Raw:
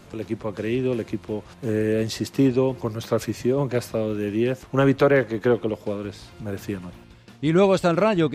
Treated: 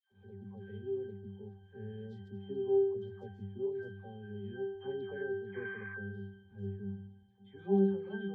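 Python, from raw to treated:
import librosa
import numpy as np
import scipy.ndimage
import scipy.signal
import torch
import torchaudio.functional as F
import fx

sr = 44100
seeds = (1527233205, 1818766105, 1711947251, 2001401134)

y = fx.spec_paint(x, sr, seeds[0], shape='noise', start_s=5.5, length_s=0.42, low_hz=990.0, high_hz=2500.0, level_db=-17.0)
y = fx.octave_resonator(y, sr, note='G', decay_s=0.72)
y = fx.dispersion(y, sr, late='lows', ms=115.0, hz=1100.0)
y = y * 10.0 ** (1.0 / 20.0)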